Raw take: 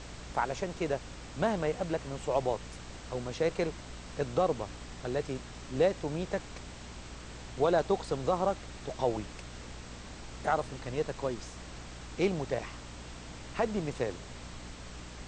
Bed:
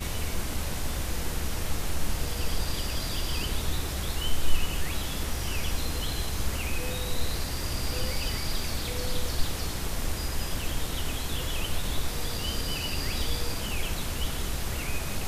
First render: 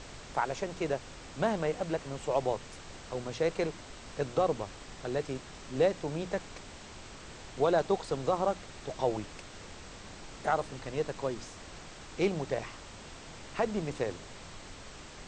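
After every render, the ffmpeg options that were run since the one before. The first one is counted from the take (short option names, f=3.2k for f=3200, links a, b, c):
-af "bandreject=f=60:t=h:w=6,bandreject=f=120:t=h:w=6,bandreject=f=180:t=h:w=6,bandreject=f=240:t=h:w=6,bandreject=f=300:t=h:w=6"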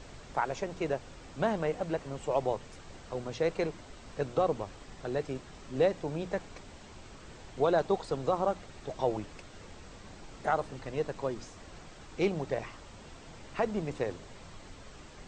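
-af "afftdn=nr=6:nf=-48"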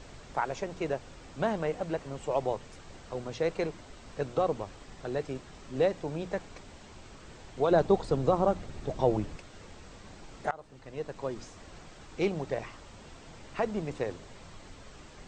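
-filter_complex "[0:a]asettb=1/sr,asplit=3[a][b][c];[a]atrim=end=7.714[d];[b]atrim=start=7.71:end=9.36,asetpts=PTS-STARTPTS,afade=t=in:d=0.004:c=qsin,afade=t=out:st=1.646:d=0.004:c=qsin,lowshelf=f=440:g=9[e];[c]atrim=start=9.356[f];[d][e]acrossfade=d=0.004:c1=hsin:c2=qsin[g];[g][f]acrossfade=d=0.004:c1=qsin:c2=hsin,asplit=2[h][i];[h]atrim=end=10.51,asetpts=PTS-STARTPTS,afade=t=out:st=10.506:d=0.004:c=hsin:silence=0.0944061[j];[i]atrim=start=10.51,asetpts=PTS-STARTPTS,afade=t=in:d=0.89:silence=0.0944061[k];[j][k]concat=n=2:v=0:a=1"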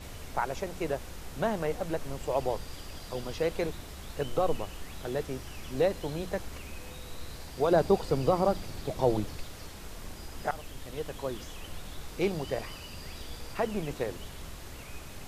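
-filter_complex "[1:a]volume=-13.5dB[a];[0:a][a]amix=inputs=2:normalize=0"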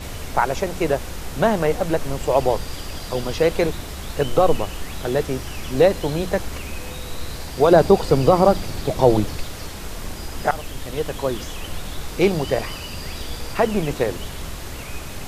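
-af "volume=11.5dB,alimiter=limit=-2dB:level=0:latency=1"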